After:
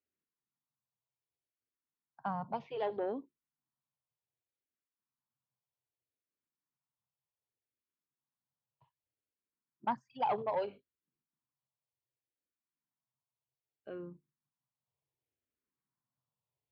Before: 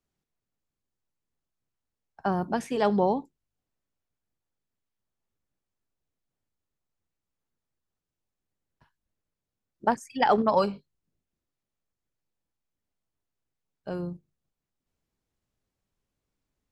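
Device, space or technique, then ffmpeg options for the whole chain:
barber-pole phaser into a guitar amplifier: -filter_complex "[0:a]asplit=2[link_01][link_02];[link_02]afreqshift=-0.65[link_03];[link_01][link_03]amix=inputs=2:normalize=1,asoftclip=type=tanh:threshold=-19.5dB,highpass=110,equalizer=frequency=130:width_type=q:width=4:gain=9,equalizer=frequency=180:width_type=q:width=4:gain=-4,equalizer=frequency=1000:width_type=q:width=4:gain=7,lowpass=frequency=3500:width=0.5412,lowpass=frequency=3500:width=1.3066,volume=-8dB"

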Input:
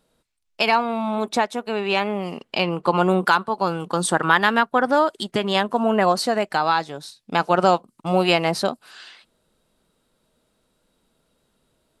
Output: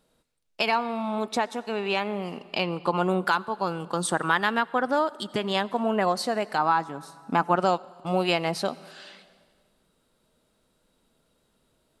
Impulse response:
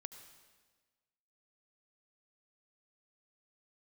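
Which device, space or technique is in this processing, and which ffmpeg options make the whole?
ducked reverb: -filter_complex "[0:a]asplit=3[link_01][link_02][link_03];[1:a]atrim=start_sample=2205[link_04];[link_02][link_04]afir=irnorm=-1:irlink=0[link_05];[link_03]apad=whole_len=529232[link_06];[link_05][link_06]sidechaincompress=threshold=-25dB:ratio=8:attack=16:release=951,volume=6.5dB[link_07];[link_01][link_07]amix=inputs=2:normalize=0,asettb=1/sr,asplit=3[link_08][link_09][link_10];[link_08]atrim=end=6.584[link_11];[link_09]atrim=start=6.58:end=7.56,asetpts=PTS-STARTPTS,afade=type=in:duration=0.004:curve=qsin,afade=type=out:start_time=0.976:duration=0.004:curve=qsin,equalizer=frequency=250:width_type=o:width=1:gain=8,equalizer=frequency=500:width_type=o:width=1:gain=-4,equalizer=frequency=1000:width_type=o:width=1:gain=6,equalizer=frequency=4000:width_type=o:width=1:gain=-10[link_12];[link_10]atrim=start=7.556[link_13];[link_11][link_12]acrossfade=duration=0.004:curve1=hsin:curve2=qsin[link_14];[link_14][link_13]acrossfade=duration=0.004:curve1=qsin:curve2=hsin,volume=-8dB"

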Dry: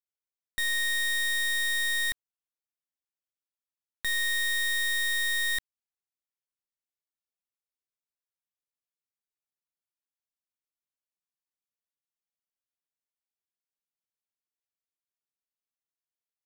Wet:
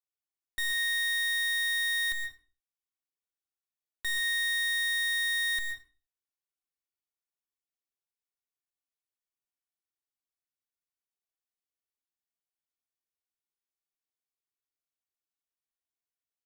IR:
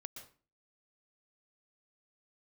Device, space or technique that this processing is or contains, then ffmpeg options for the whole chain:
microphone above a desk: -filter_complex "[0:a]aecho=1:1:2.7:0.77[link_01];[1:a]atrim=start_sample=2205[link_02];[link_01][link_02]afir=irnorm=-1:irlink=0,volume=-1.5dB"

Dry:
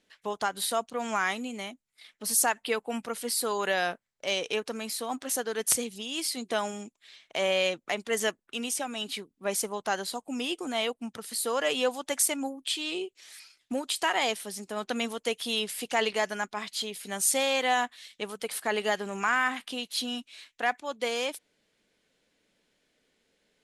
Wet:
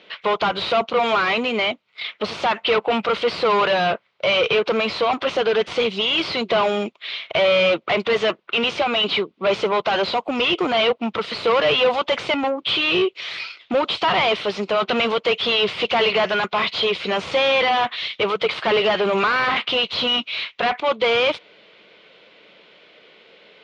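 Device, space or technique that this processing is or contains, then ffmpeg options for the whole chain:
overdrive pedal into a guitar cabinet: -filter_complex "[0:a]asplit=2[link_01][link_02];[link_02]highpass=frequency=720:poles=1,volume=35dB,asoftclip=type=tanh:threshold=-8.5dB[link_03];[link_01][link_03]amix=inputs=2:normalize=0,lowpass=frequency=3100:poles=1,volume=-6dB,highpass=90,equalizer=frequency=260:width_type=q:width=4:gain=-10,equalizer=frequency=810:width_type=q:width=4:gain=-5,equalizer=frequency=1700:width_type=q:width=4:gain=-10,lowpass=frequency=3700:width=0.5412,lowpass=frequency=3700:width=1.3066,volume=1dB"

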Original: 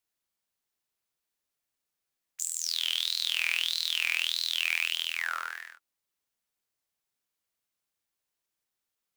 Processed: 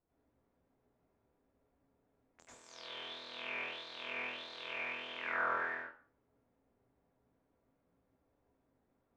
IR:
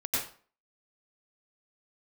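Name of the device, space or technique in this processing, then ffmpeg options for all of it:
television next door: -filter_complex "[0:a]acompressor=threshold=-35dB:ratio=5,lowpass=580[link_01];[1:a]atrim=start_sample=2205[link_02];[link_01][link_02]afir=irnorm=-1:irlink=0,volume=16dB"

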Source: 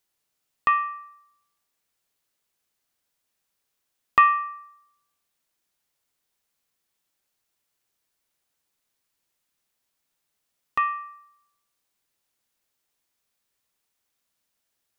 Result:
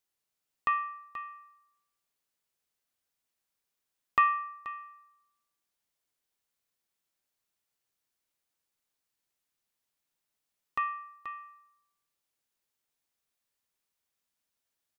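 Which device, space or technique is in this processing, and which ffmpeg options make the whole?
ducked delay: -filter_complex "[0:a]asplit=3[link_01][link_02][link_03];[link_02]adelay=481,volume=-7dB[link_04];[link_03]apad=whole_len=682092[link_05];[link_04][link_05]sidechaincompress=threshold=-26dB:ratio=8:attack=16:release=1290[link_06];[link_01][link_06]amix=inputs=2:normalize=0,volume=-7.5dB"

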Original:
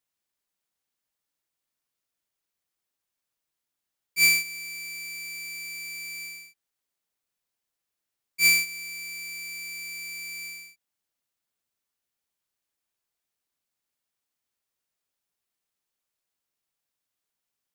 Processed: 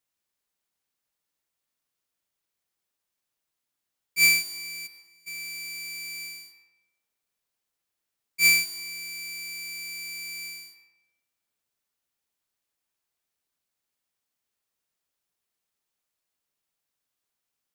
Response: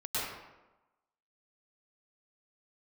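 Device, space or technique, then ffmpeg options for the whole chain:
saturated reverb return: -filter_complex "[0:a]asplit=3[link_01][link_02][link_03];[link_01]afade=type=out:start_time=4.86:duration=0.02[link_04];[link_02]agate=range=-33dB:threshold=-23dB:ratio=3:detection=peak,afade=type=in:start_time=4.86:duration=0.02,afade=type=out:start_time=5.26:duration=0.02[link_05];[link_03]afade=type=in:start_time=5.26:duration=0.02[link_06];[link_04][link_05][link_06]amix=inputs=3:normalize=0,asplit=2[link_07][link_08];[1:a]atrim=start_sample=2205[link_09];[link_08][link_09]afir=irnorm=-1:irlink=0,asoftclip=type=tanh:threshold=-20dB,volume=-15.5dB[link_10];[link_07][link_10]amix=inputs=2:normalize=0"

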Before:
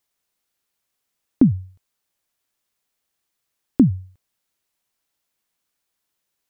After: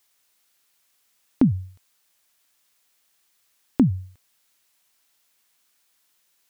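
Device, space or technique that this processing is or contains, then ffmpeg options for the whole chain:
mastering chain: -af "equalizer=frequency=250:width_type=o:width=0.3:gain=3,acompressor=threshold=-16dB:ratio=2,tiltshelf=frequency=730:gain=-5,alimiter=level_in=11.5dB:limit=-1dB:release=50:level=0:latency=1,volume=-5.5dB"

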